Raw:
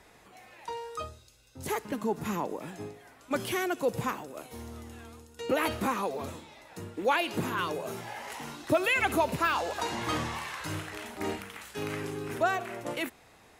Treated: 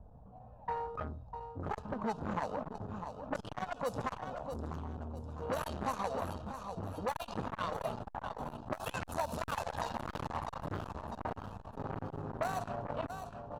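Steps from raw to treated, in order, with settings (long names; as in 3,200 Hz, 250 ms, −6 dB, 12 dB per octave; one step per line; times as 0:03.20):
dynamic equaliser 130 Hz, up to −6 dB, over −48 dBFS, Q 0.89
in parallel at −7.5 dB: sample-rate reduction 1,700 Hz, jitter 0%
on the sum: phaser with its sweep stopped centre 860 Hz, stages 4
low-pass that shuts in the quiet parts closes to 450 Hz, open at −26 dBFS
low-shelf EQ 92 Hz +8 dB
downward compressor 10 to 1, threshold −34 dBFS, peak gain reduction 14 dB
on a send: repeating echo 651 ms, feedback 43%, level −8.5 dB
on the sum: saturating transformer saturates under 940 Hz
level +5.5 dB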